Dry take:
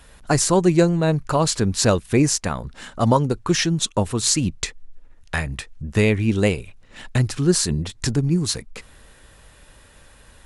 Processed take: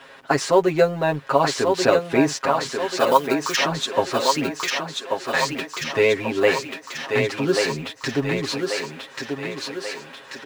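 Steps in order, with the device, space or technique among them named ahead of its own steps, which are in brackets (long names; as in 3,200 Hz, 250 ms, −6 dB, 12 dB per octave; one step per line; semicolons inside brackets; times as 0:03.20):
phone line with mismatched companding (band-pass filter 350–3,300 Hz; mu-law and A-law mismatch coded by mu)
0:02.97–0:03.56: spectral tilt +4 dB per octave
comb filter 7.4 ms, depth 93%
feedback echo with a high-pass in the loop 1,137 ms, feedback 59%, high-pass 260 Hz, level −3.5 dB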